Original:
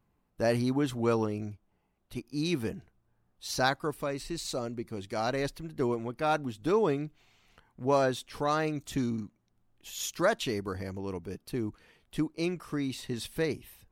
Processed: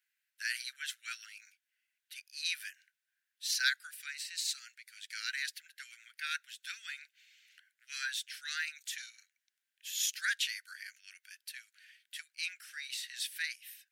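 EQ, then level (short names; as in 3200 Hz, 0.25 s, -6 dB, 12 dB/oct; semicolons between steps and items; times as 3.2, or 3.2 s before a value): steep high-pass 1500 Hz 96 dB/oct; +3.0 dB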